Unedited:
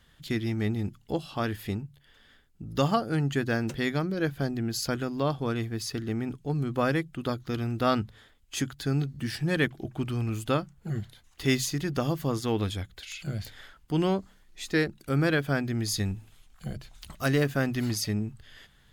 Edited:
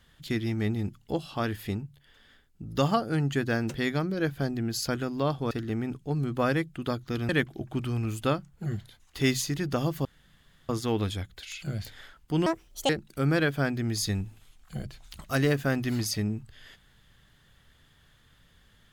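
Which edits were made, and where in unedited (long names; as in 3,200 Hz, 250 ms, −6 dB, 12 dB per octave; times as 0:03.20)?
0:05.51–0:05.90: remove
0:07.68–0:09.53: remove
0:12.29: splice in room tone 0.64 s
0:14.06–0:14.80: play speed 171%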